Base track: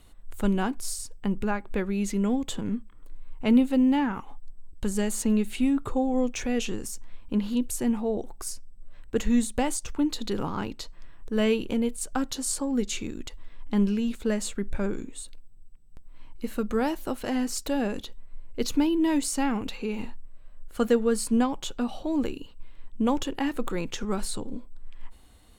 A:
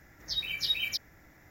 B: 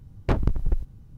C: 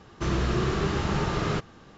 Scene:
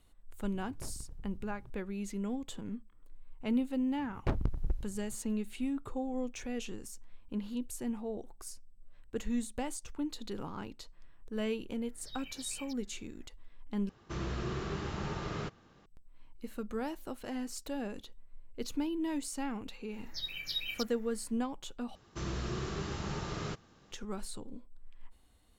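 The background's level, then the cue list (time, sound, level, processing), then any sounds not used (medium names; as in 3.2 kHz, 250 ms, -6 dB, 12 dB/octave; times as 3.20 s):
base track -11 dB
0.53 s: add B -7.5 dB + compression 4:1, threshold -36 dBFS
3.98 s: add B -9 dB
11.76 s: add A -11.5 dB + treble shelf 2.5 kHz -9 dB
13.89 s: replace with C -11 dB
19.86 s: add A -7 dB, fades 0.10 s
21.95 s: replace with C -12 dB + tone controls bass +1 dB, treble +7 dB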